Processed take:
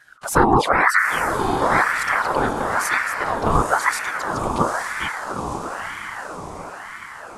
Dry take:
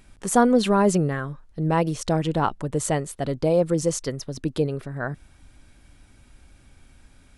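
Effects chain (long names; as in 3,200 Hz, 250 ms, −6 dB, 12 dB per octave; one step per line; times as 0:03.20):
flanger swept by the level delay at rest 6.9 ms, full sweep at −17.5 dBFS
random phases in short frames
on a send: feedback delay with all-pass diffusion 910 ms, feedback 56%, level −5 dB
on the sum: ring modulator whose carrier an LFO sweeps 1,100 Hz, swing 50%, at 1 Hz
level +6 dB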